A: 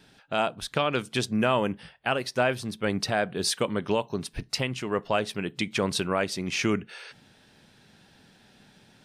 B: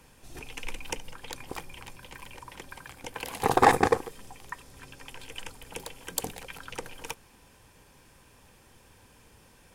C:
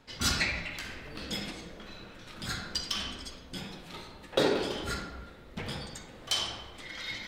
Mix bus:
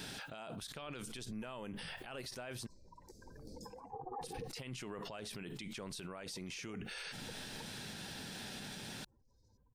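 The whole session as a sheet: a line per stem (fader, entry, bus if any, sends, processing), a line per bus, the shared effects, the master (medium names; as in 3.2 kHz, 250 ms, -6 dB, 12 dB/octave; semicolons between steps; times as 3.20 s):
-16.0 dB, 0.00 s, muted 2.67–4.21 s, no send, treble shelf 4.3 kHz +8.5 dB; level flattener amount 70%
-13.0 dB, 0.50 s, no send, spectral contrast enhancement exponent 2.7; low-pass 1.4 kHz 24 dB/octave
3.59 s -8 dB -> 3.86 s -20.5 dB, 2.30 s, no send, elliptic band-stop 530–5500 Hz, stop band 40 dB; auto duck -23 dB, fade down 0.70 s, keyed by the first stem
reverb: none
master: peak limiter -36.5 dBFS, peak gain reduction 14.5 dB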